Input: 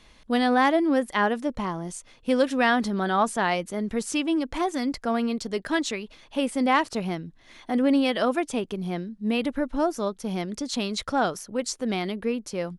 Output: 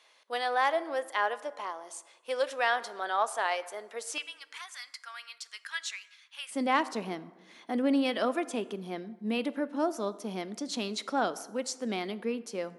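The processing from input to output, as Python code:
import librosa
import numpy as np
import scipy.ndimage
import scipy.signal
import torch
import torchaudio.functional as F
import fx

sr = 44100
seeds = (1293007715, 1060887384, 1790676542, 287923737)

y = fx.highpass(x, sr, hz=fx.steps((0.0, 490.0), (4.18, 1400.0), (6.51, 210.0)), slope=24)
y = fx.rev_plate(y, sr, seeds[0], rt60_s=1.3, hf_ratio=0.5, predelay_ms=0, drr_db=15.0)
y = y * librosa.db_to_amplitude(-5.0)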